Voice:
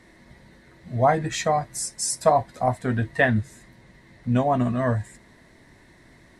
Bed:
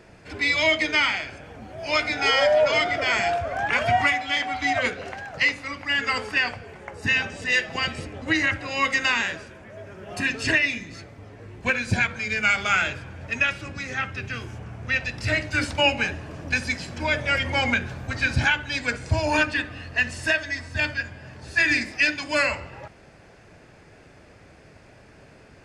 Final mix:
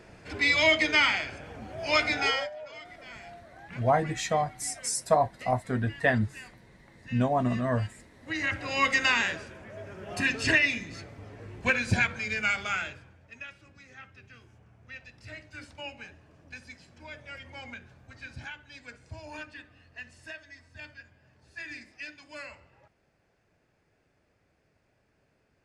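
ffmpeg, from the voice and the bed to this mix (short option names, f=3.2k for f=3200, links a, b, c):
-filter_complex "[0:a]adelay=2850,volume=-4.5dB[a];[1:a]volume=20dB,afade=t=out:st=2.14:d=0.36:silence=0.0794328,afade=t=in:st=8.19:d=0.51:silence=0.0841395,afade=t=out:st=11.87:d=1.35:silence=0.11885[b];[a][b]amix=inputs=2:normalize=0"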